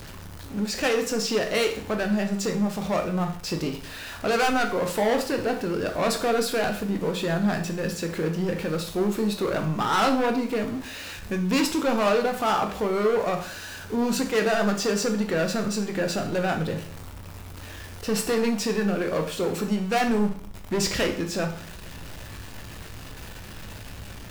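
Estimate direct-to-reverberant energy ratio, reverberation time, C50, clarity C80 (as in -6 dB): 4.0 dB, 0.50 s, 9.5 dB, 13.5 dB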